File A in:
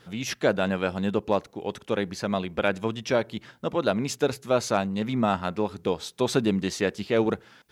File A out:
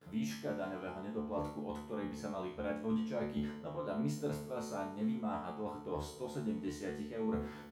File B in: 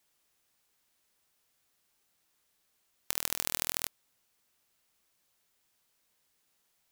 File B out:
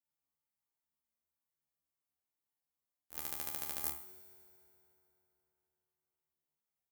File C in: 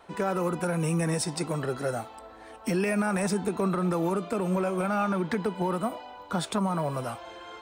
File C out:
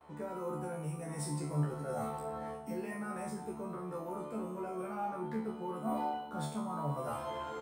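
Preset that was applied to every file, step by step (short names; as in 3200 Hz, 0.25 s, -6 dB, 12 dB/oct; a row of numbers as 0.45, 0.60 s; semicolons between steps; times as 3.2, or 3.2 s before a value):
gate with hold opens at -46 dBFS; HPF 52 Hz; bell 4000 Hz -11.5 dB 2.7 oct; de-hum 123.5 Hz, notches 4; reverse; compressor 16:1, threshold -39 dBFS; reverse; resonator 74 Hz, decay 0.5 s, harmonics all, mix 100%; in parallel at -5 dB: requantised 6-bit, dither none; on the sum: doubler 28 ms -8.5 dB; FDN reverb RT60 3.6 s, high-frequency decay 0.7×, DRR 13.5 dB; gain +15.5 dB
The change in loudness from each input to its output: -13.0, -6.5, -10.0 LU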